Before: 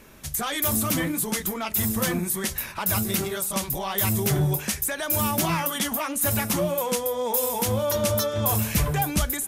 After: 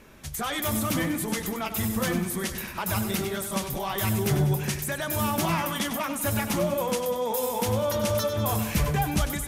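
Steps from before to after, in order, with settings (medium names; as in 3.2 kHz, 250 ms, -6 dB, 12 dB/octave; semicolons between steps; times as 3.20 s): treble shelf 6.7 kHz -8 dB; on a send: two-band feedback delay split 480 Hz, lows 193 ms, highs 97 ms, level -10 dB; on the sum: trim -1 dB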